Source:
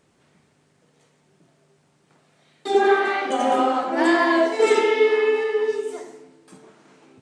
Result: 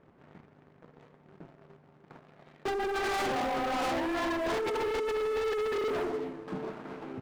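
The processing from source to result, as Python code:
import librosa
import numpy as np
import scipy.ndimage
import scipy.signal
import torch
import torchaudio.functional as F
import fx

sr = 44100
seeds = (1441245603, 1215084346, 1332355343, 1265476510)

p1 = scipy.signal.sosfilt(scipy.signal.butter(2, 1500.0, 'lowpass', fs=sr, output='sos'), x)
p2 = fx.over_compress(p1, sr, threshold_db=-27.0, ratio=-1.0)
p3 = fx.leveller(p2, sr, passes=2)
p4 = 10.0 ** (-29.5 / 20.0) * np.tanh(p3 / 10.0 ** (-29.5 / 20.0))
y = p4 + fx.echo_single(p4, sr, ms=275, db=-17.5, dry=0)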